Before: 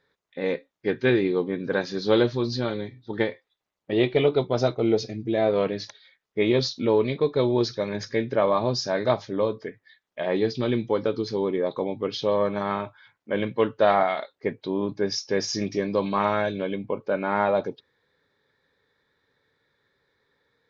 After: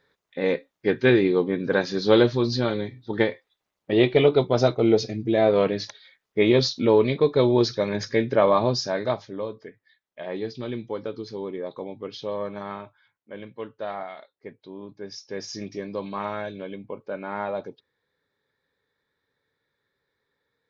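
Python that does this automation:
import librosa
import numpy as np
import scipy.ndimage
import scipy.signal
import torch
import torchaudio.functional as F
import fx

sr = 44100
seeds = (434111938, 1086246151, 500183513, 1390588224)

y = fx.gain(x, sr, db=fx.line((8.61, 3.0), (9.43, -7.0), (12.64, -7.0), (13.38, -13.0), (14.94, -13.0), (15.52, -7.0)))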